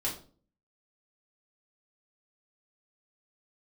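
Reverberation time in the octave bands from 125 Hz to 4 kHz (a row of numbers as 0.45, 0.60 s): 0.60, 0.60, 0.50, 0.35, 0.30, 0.30 s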